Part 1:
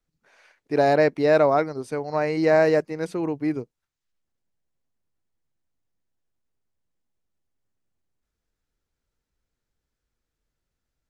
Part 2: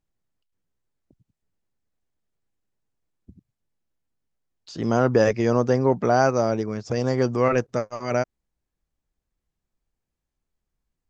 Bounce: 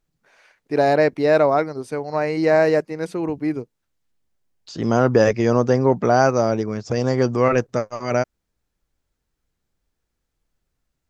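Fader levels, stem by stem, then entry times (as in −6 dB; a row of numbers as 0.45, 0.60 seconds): +2.0, +3.0 decibels; 0.00, 0.00 seconds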